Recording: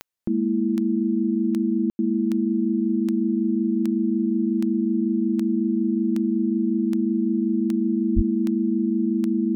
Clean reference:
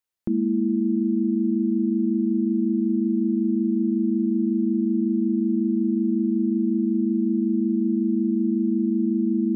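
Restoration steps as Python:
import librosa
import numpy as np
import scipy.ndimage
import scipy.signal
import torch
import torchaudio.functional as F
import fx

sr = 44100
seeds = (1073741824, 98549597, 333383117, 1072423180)

y = fx.fix_declick_ar(x, sr, threshold=10.0)
y = fx.highpass(y, sr, hz=140.0, slope=24, at=(8.15, 8.27), fade=0.02)
y = fx.fix_ambience(y, sr, seeds[0], print_start_s=0.0, print_end_s=0.5, start_s=1.9, end_s=1.99)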